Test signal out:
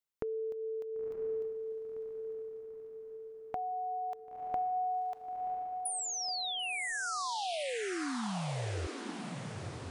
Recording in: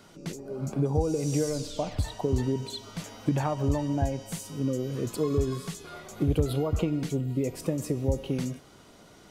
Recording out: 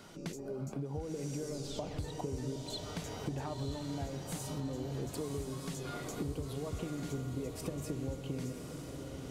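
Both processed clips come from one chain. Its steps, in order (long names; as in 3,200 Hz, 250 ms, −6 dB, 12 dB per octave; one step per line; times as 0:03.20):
downward compressor 6 to 1, threshold −37 dBFS
feedback delay with all-pass diffusion 1,003 ms, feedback 53%, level −5.5 dB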